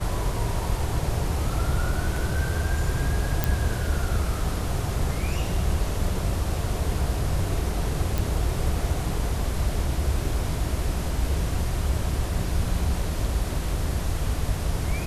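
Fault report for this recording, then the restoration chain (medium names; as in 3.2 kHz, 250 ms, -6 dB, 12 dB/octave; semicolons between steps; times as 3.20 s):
3.44 s: pop
8.18 s: pop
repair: de-click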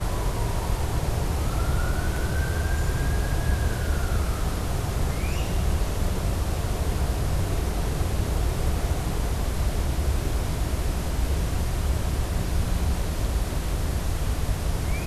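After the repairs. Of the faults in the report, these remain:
nothing left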